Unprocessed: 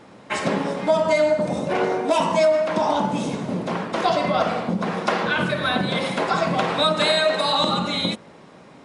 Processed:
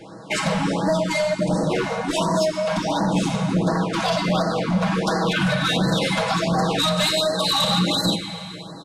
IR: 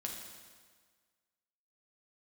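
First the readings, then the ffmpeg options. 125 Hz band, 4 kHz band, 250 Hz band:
+6.5 dB, +2.5 dB, +3.5 dB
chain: -filter_complex "[0:a]bandreject=frequency=1900:width=18,aecho=1:1:6.2:0.72,acrossover=split=250|3000[link_01][link_02][link_03];[link_02]acompressor=threshold=-23dB:ratio=6[link_04];[link_01][link_04][link_03]amix=inputs=3:normalize=0,asoftclip=type=hard:threshold=-20.5dB,asplit=2[link_05][link_06];[1:a]atrim=start_sample=2205,asetrate=23373,aresample=44100[link_07];[link_06][link_07]afir=irnorm=-1:irlink=0,volume=-8.5dB[link_08];[link_05][link_08]amix=inputs=2:normalize=0,aresample=32000,aresample=44100,afftfilt=real='re*(1-between(b*sr/1024,300*pow(2900/300,0.5+0.5*sin(2*PI*1.4*pts/sr))/1.41,300*pow(2900/300,0.5+0.5*sin(2*PI*1.4*pts/sr))*1.41))':imag='im*(1-between(b*sr/1024,300*pow(2900/300,0.5+0.5*sin(2*PI*1.4*pts/sr))/1.41,300*pow(2900/300,0.5+0.5*sin(2*PI*1.4*pts/sr))*1.41))':win_size=1024:overlap=0.75,volume=1.5dB"

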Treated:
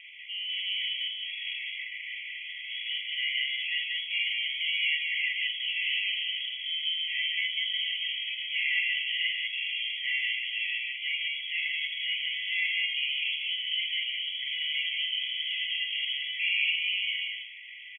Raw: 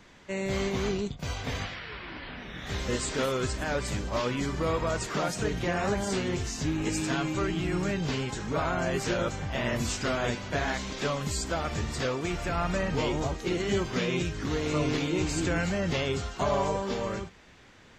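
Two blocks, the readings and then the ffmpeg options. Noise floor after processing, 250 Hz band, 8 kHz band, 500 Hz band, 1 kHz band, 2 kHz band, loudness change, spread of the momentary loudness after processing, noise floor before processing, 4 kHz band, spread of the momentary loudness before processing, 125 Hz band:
−41 dBFS, below −40 dB, below −40 dB, below −40 dB, below −40 dB, +6.0 dB, +1.5 dB, 7 LU, −54 dBFS, +11.5 dB, 6 LU, below −40 dB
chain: -af "aeval=exprs='val(0)+0.5*0.0112*sgn(val(0))':channel_layout=same,tiltshelf=frequency=790:gain=-9,aresample=16000,asoftclip=type=tanh:threshold=-22dB,aresample=44100,acompressor=mode=upward:threshold=-40dB:ratio=2.5,aecho=1:1:43.73|189.5:0.631|0.794,lowpass=frequency=2900:width_type=q:width=0.5098,lowpass=frequency=2900:width_type=q:width=0.6013,lowpass=frequency=2900:width_type=q:width=0.9,lowpass=frequency=2900:width_type=q:width=2.563,afreqshift=-3400,anlmdn=0.158,bandreject=frequency=146.3:width_type=h:width=4,bandreject=frequency=292.6:width_type=h:width=4,bandreject=frequency=438.9:width_type=h:width=4,bandreject=frequency=585.2:width_type=h:width=4,bandreject=frequency=731.5:width_type=h:width=4,bandreject=frequency=877.8:width_type=h:width=4,bandreject=frequency=1024.1:width_type=h:width=4,bandreject=frequency=1170.4:width_type=h:width=4,bandreject=frequency=1316.7:width_type=h:width=4,bandreject=frequency=1463:width_type=h:width=4,bandreject=frequency=1609.3:width_type=h:width=4,bandreject=frequency=1755.6:width_type=h:width=4,bandreject=frequency=1901.9:width_type=h:width=4,bandreject=frequency=2048.2:width_type=h:width=4,bandreject=frequency=2194.5:width_type=h:width=4,bandreject=frequency=2340.8:width_type=h:width=4,afftfilt=real='re*eq(mod(floor(b*sr/1024/1900),2),1)':imag='im*eq(mod(floor(b*sr/1024/1900),2),1)':win_size=1024:overlap=0.75"

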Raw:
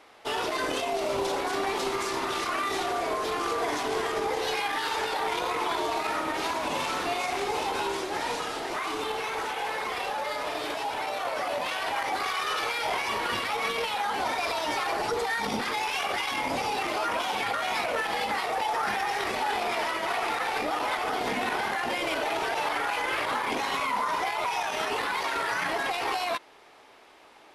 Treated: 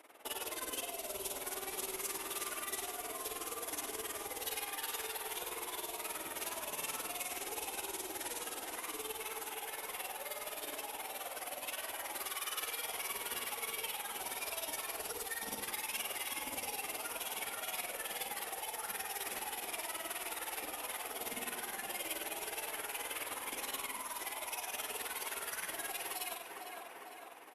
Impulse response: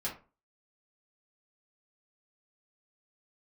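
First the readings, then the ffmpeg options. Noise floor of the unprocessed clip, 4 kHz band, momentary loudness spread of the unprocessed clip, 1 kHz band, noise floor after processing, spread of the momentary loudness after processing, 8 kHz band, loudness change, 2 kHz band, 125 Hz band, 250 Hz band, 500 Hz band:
−53 dBFS, −10.5 dB, 3 LU, −16.5 dB, −48 dBFS, 3 LU, +1.0 dB, −11.0 dB, −13.5 dB, −16.5 dB, −16.0 dB, −15.5 dB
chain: -filter_complex "[0:a]bass=frequency=250:gain=-12,treble=frequency=4000:gain=10,acontrast=64,tremolo=f=19:d=0.94,flanger=delay=3.1:depth=2.4:regen=-57:speed=0.25:shape=triangular,firequalizer=gain_entry='entry(300,0);entry(840,-5);entry(2800,-6);entry(4400,-17);entry(12000,2)':delay=0.05:min_phase=1,asplit=2[link_01][link_02];[link_02]aecho=0:1:454|908|1362|1816|2270:0.251|0.121|0.0579|0.0278|0.0133[link_03];[link_01][link_03]amix=inputs=2:normalize=0,aresample=32000,aresample=44100,acrossover=split=120|3000[link_04][link_05][link_06];[link_05]acompressor=threshold=-44dB:ratio=6[link_07];[link_04][link_07][link_06]amix=inputs=3:normalize=0,bandreject=frequency=57.67:width_type=h:width=4,bandreject=frequency=115.34:width_type=h:width=4,bandreject=frequency=173.01:width_type=h:width=4,bandreject=frequency=230.68:width_type=h:width=4,bandreject=frequency=288.35:width_type=h:width=4,bandreject=frequency=346.02:width_type=h:width=4,bandreject=frequency=403.69:width_type=h:width=4,bandreject=frequency=461.36:width_type=h:width=4,bandreject=frequency=519.03:width_type=h:width=4,bandreject=frequency=576.7:width_type=h:width=4,bandreject=frequency=634.37:width_type=h:width=4,bandreject=frequency=692.04:width_type=h:width=4,bandreject=frequency=749.71:width_type=h:width=4,bandreject=frequency=807.38:width_type=h:width=4,bandreject=frequency=865.05:width_type=h:width=4,bandreject=frequency=922.72:width_type=h:width=4,bandreject=frequency=980.39:width_type=h:width=4,bandreject=frequency=1038.06:width_type=h:width=4,bandreject=frequency=1095.73:width_type=h:width=4,bandreject=frequency=1153.4:width_type=h:width=4,bandreject=frequency=1211.07:width_type=h:width=4,bandreject=frequency=1268.74:width_type=h:width=4,bandreject=frequency=1326.41:width_type=h:width=4,bandreject=frequency=1384.08:width_type=h:width=4,asplit=2[link_08][link_09];[link_09]adelay=90,lowpass=frequency=2900:poles=1,volume=-6dB,asplit=2[link_10][link_11];[link_11]adelay=90,lowpass=frequency=2900:poles=1,volume=0.44,asplit=2[link_12][link_13];[link_13]adelay=90,lowpass=frequency=2900:poles=1,volume=0.44,asplit=2[link_14][link_15];[link_15]adelay=90,lowpass=frequency=2900:poles=1,volume=0.44,asplit=2[link_16][link_17];[link_17]adelay=90,lowpass=frequency=2900:poles=1,volume=0.44[link_18];[link_10][link_12][link_14][link_16][link_18]amix=inputs=5:normalize=0[link_19];[link_08][link_19]amix=inputs=2:normalize=0" -ar 48000 -c:a libopus -b:a 64k

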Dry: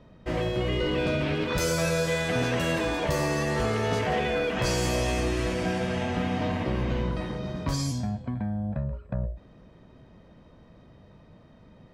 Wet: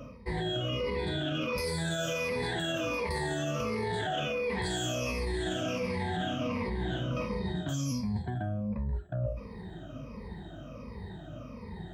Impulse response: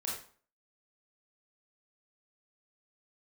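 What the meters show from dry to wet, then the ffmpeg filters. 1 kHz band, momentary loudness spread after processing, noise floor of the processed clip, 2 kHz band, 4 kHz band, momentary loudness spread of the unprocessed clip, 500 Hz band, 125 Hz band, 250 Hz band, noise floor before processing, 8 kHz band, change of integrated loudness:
−4.5 dB, 12 LU, −45 dBFS, −5.0 dB, −2.0 dB, 7 LU, −5.5 dB, −5.0 dB, −5.0 dB, −54 dBFS, −5.5 dB, −5.0 dB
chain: -af "afftfilt=real='re*pow(10,22/40*sin(2*PI*(0.89*log(max(b,1)*sr/1024/100)/log(2)-(-1.4)*(pts-256)/sr)))':imag='im*pow(10,22/40*sin(2*PI*(0.89*log(max(b,1)*sr/1024/100)/log(2)-(-1.4)*(pts-256)/sr)))':win_size=1024:overlap=0.75,alimiter=limit=-16dB:level=0:latency=1:release=22,adynamicequalizer=threshold=0.00251:dfrequency=3400:dqfactor=5.9:tfrequency=3400:tqfactor=5.9:attack=5:release=100:ratio=0.375:range=3:mode=boostabove:tftype=bell,highpass=frequency=51:width=0.5412,highpass=frequency=51:width=1.3066,aeval=exprs='val(0)+0.002*(sin(2*PI*50*n/s)+sin(2*PI*2*50*n/s)/2+sin(2*PI*3*50*n/s)/3+sin(2*PI*4*50*n/s)/4+sin(2*PI*5*50*n/s)/5)':channel_layout=same,areverse,acompressor=threshold=-35dB:ratio=6,areverse,volume=4.5dB"

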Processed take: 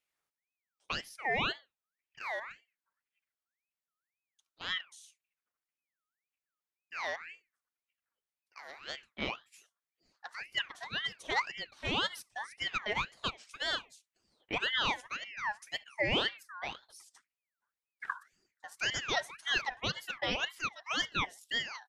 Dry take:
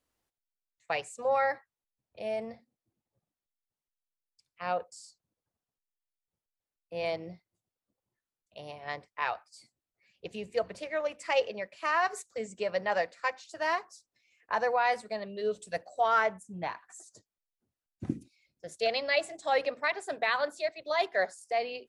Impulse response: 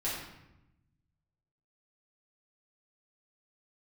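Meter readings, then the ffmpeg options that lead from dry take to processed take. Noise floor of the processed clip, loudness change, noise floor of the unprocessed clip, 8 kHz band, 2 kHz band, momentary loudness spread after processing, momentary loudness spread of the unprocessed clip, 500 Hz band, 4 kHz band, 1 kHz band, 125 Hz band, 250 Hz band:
below −85 dBFS, −3.5 dB, below −85 dBFS, +0.5 dB, −1.0 dB, 13 LU, 14 LU, −12.0 dB, +6.5 dB, −8.0 dB, +1.5 dB, −2.0 dB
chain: -filter_complex "[0:a]asplit=2[link_01][link_02];[link_02]adelay=69,lowpass=frequency=2000:poles=1,volume=-23.5dB,asplit=2[link_03][link_04];[link_04]adelay=69,lowpass=frequency=2000:poles=1,volume=0.28[link_05];[link_01][link_03][link_05]amix=inputs=3:normalize=0,aeval=exprs='val(0)*sin(2*PI*1900*n/s+1900*0.35/1.9*sin(2*PI*1.9*n/s))':channel_layout=same,volume=-2dB"

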